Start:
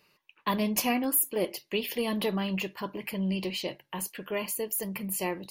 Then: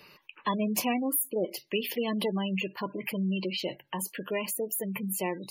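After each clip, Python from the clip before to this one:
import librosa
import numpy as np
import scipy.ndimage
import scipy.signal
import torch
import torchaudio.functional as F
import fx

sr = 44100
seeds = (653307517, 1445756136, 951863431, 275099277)

y = fx.spec_gate(x, sr, threshold_db=-20, keep='strong')
y = fx.band_squash(y, sr, depth_pct=40)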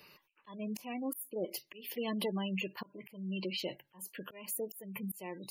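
y = fx.high_shelf(x, sr, hz=7700.0, db=6.5)
y = fx.auto_swell(y, sr, attack_ms=333.0)
y = y * 10.0 ** (-5.5 / 20.0)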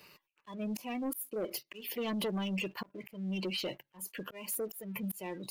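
y = fx.leveller(x, sr, passes=2)
y = y * 10.0 ** (-4.0 / 20.0)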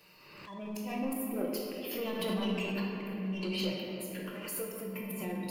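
y = fx.room_shoebox(x, sr, seeds[0], volume_m3=150.0, walls='hard', distance_m=0.68)
y = fx.pre_swell(y, sr, db_per_s=41.0)
y = y * 10.0 ** (-4.5 / 20.0)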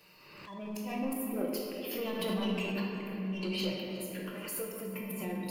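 y = x + 10.0 ** (-18.5 / 20.0) * np.pad(x, (int(362 * sr / 1000.0), 0))[:len(x)]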